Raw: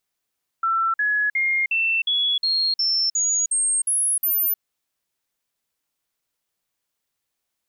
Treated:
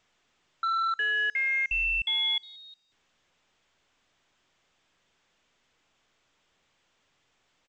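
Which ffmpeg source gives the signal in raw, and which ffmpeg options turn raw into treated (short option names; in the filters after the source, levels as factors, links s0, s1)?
-f lavfi -i "aevalsrc='0.126*clip(min(mod(t,0.36),0.31-mod(t,0.36))/0.005,0,1)*sin(2*PI*1340*pow(2,floor(t/0.36)/3)*mod(t,0.36))':d=3.96:s=44100"
-filter_complex "[0:a]aresample=8000,asoftclip=type=hard:threshold=0.0501,aresample=44100,asplit=2[s0][s1];[s1]adelay=180,highpass=300,lowpass=3400,asoftclip=type=hard:threshold=0.0316,volume=0.0631[s2];[s0][s2]amix=inputs=2:normalize=0" -ar 16000 -c:a pcm_alaw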